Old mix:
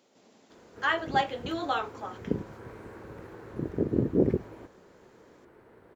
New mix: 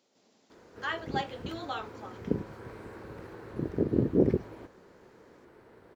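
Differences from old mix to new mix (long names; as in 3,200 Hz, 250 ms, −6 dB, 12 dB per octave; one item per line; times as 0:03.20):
speech −7.5 dB
master: add parametric band 4,900 Hz +5.5 dB 1.1 octaves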